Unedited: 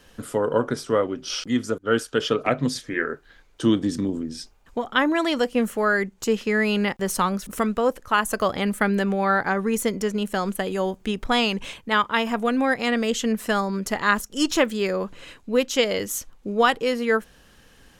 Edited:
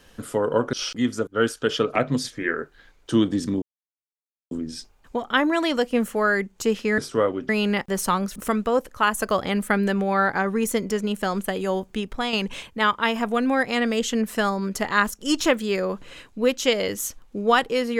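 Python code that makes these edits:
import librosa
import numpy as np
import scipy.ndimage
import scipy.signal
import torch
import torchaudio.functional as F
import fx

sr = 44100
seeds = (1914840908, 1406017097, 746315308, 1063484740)

y = fx.edit(x, sr, fx.move(start_s=0.73, length_s=0.51, to_s=6.6),
    fx.insert_silence(at_s=4.13, length_s=0.89),
    fx.fade_out_to(start_s=10.95, length_s=0.49, floor_db=-7.5), tone=tone)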